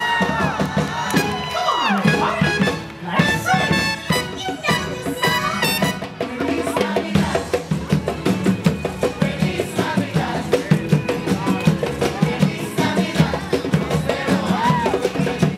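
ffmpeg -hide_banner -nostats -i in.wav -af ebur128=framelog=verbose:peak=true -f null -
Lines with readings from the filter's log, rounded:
Integrated loudness:
  I:         -19.7 LUFS
  Threshold: -29.7 LUFS
Loudness range:
  LRA:         2.0 LU
  Threshold: -39.8 LUFS
  LRA low:   -20.6 LUFS
  LRA high:  -18.6 LUFS
True peak:
  Peak:       -3.2 dBFS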